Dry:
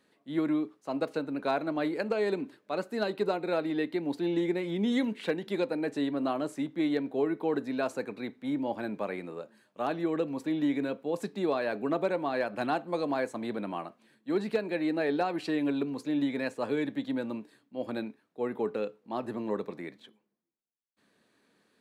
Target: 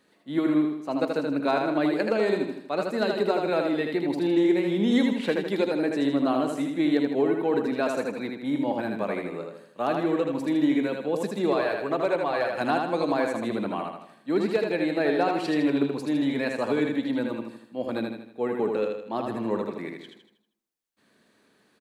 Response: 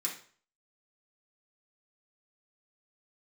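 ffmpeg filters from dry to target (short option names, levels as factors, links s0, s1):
-filter_complex "[0:a]asettb=1/sr,asplit=3[s0][s1][s2];[s0]atrim=end=11.524[s3];[s1]atrim=start=11.52:end=12.61,asetpts=PTS-STARTPTS,afade=t=in:d=0.004:c=qsin,afade=t=out:st=1.086:d=0.004:c=qsin,equalizer=f=230:w=1.9:g=-12.5[s4];[s2]atrim=start=12.606[s5];[s3][s4]acrossfade=d=0.004:c1=hsin:c2=qsin[s6];[s6][s5]acrossfade=d=0.004:c1=qsin:c2=hsin,aecho=1:1:79|158|237|316|395|474:0.631|0.29|0.134|0.0614|0.0283|0.013,volume=1.58"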